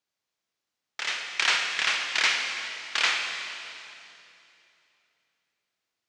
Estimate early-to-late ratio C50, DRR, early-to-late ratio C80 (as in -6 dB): 3.5 dB, 3.0 dB, 4.5 dB